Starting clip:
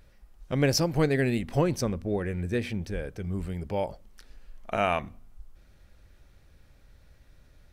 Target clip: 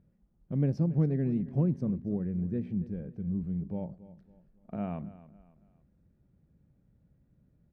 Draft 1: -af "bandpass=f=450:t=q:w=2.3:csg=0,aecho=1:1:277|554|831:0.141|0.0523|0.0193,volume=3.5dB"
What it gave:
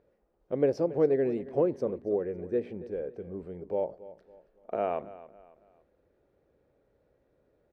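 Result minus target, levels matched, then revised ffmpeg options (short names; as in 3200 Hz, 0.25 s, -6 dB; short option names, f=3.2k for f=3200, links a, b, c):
500 Hz band +11.0 dB
-af "bandpass=f=180:t=q:w=2.3:csg=0,aecho=1:1:277|554|831:0.141|0.0523|0.0193,volume=3.5dB"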